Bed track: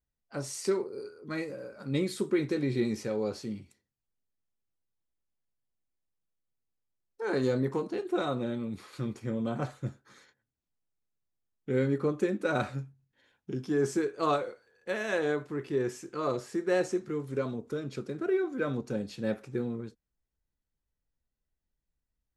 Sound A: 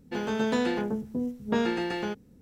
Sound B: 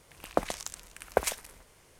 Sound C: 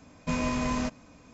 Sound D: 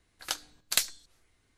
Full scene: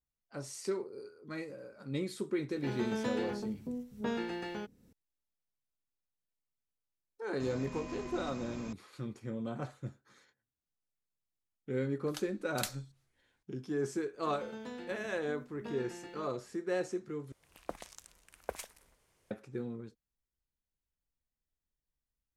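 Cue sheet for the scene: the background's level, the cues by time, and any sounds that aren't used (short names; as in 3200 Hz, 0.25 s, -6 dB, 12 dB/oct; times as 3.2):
bed track -6.5 dB
2.52 add A -9 dB + mismatched tape noise reduction encoder only
7.4 add C -2.5 dB + negative-ratio compressor -40 dBFS
11.86 add D -12 dB
14.13 add A -18 dB
17.32 replace with B -13.5 dB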